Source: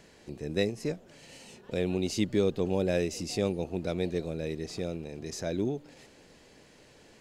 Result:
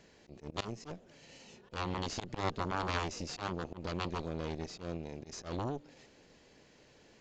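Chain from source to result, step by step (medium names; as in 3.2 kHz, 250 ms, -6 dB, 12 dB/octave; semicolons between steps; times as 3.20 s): Chebyshev shaper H 3 -7 dB, 5 -19 dB, 7 -19 dB, 8 -20 dB, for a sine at -13 dBFS; resampled via 16 kHz; slow attack 111 ms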